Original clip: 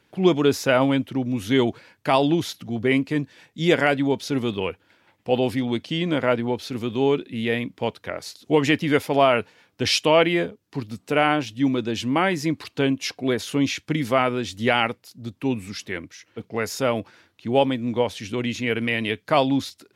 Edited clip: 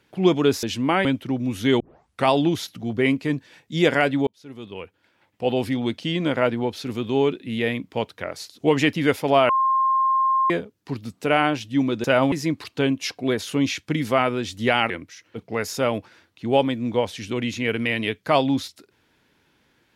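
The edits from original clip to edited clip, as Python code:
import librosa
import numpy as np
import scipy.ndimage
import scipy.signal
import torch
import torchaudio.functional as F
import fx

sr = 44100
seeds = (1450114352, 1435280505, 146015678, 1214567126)

y = fx.edit(x, sr, fx.swap(start_s=0.63, length_s=0.28, other_s=11.9, other_length_s=0.42),
    fx.tape_start(start_s=1.66, length_s=0.47),
    fx.fade_in_span(start_s=4.13, length_s=1.46),
    fx.bleep(start_s=9.35, length_s=1.01, hz=1060.0, db=-16.5),
    fx.cut(start_s=14.9, length_s=1.02), tone=tone)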